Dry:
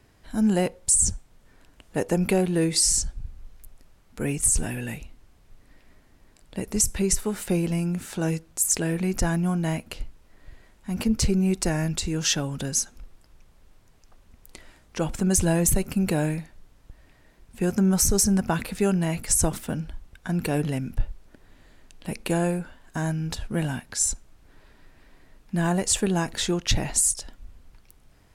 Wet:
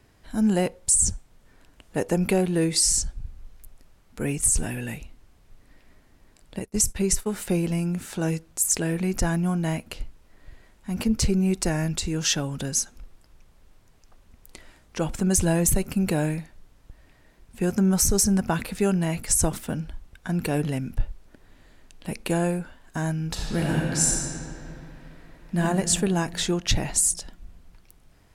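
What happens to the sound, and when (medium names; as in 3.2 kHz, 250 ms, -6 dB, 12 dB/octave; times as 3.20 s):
6.59–7.32 s: expander -28 dBFS
23.28–25.59 s: reverb throw, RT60 3 s, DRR -3 dB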